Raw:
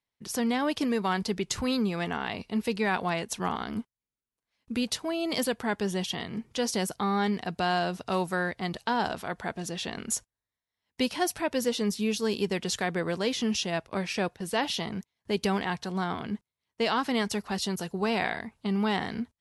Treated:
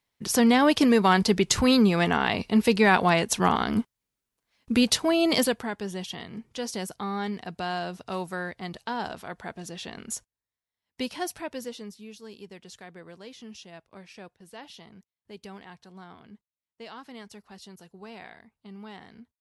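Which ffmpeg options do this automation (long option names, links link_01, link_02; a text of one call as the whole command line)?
ffmpeg -i in.wav -af "volume=8dB,afade=type=out:start_time=5.25:duration=0.46:silence=0.251189,afade=type=out:start_time=11.26:duration=0.71:silence=0.251189" out.wav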